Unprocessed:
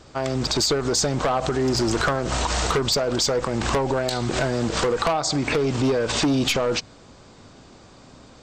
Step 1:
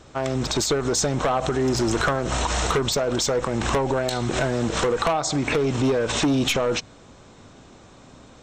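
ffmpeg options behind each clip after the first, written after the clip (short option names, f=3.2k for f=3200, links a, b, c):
-af "bandreject=f=4.7k:w=6.2"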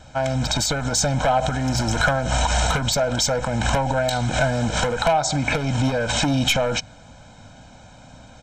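-af "aecho=1:1:1.3:0.93"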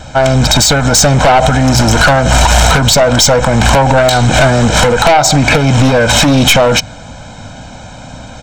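-af "aeval=exprs='0.447*(cos(1*acos(clip(val(0)/0.447,-1,1)))-cos(1*PI/2))+0.0631*(cos(4*acos(clip(val(0)/0.447,-1,1)))-cos(4*PI/2))+0.178*(cos(5*acos(clip(val(0)/0.447,-1,1)))-cos(5*PI/2))':c=same,volume=6dB"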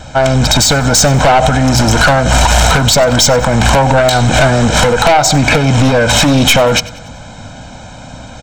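-af "aecho=1:1:95|190|285|380:0.106|0.053|0.0265|0.0132,volume=-1dB"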